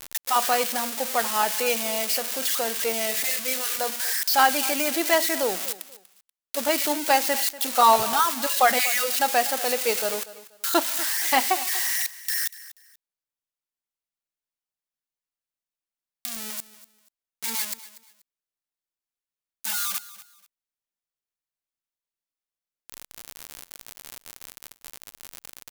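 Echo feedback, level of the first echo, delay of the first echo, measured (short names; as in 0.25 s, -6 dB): 25%, -17.0 dB, 0.241 s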